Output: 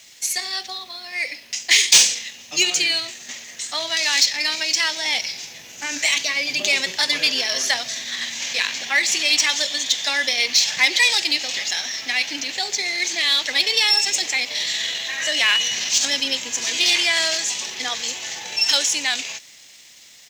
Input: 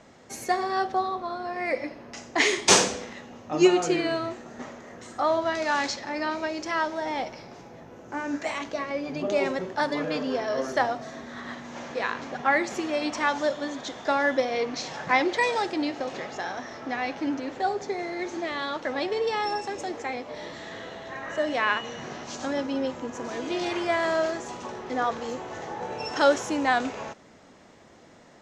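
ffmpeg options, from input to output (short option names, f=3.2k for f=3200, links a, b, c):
-filter_complex "[0:a]dynaudnorm=f=590:g=11:m=11.5dB,asplit=2[a][b];[b]alimiter=limit=-11dB:level=0:latency=1:release=188,volume=-2.5dB[c];[a][c]amix=inputs=2:normalize=0,aexciter=amount=7.3:drive=8.8:freq=2k,lowshelf=f=180:g=-7.5,atempo=1.4,equalizer=f=410:t=o:w=1.9:g=-7,acrossover=split=240|5000[d][e][f];[e]acrusher=bits=6:mix=0:aa=0.000001[g];[f]asoftclip=type=tanh:threshold=-2.5dB[h];[d][g][h]amix=inputs=3:normalize=0,volume=-11.5dB"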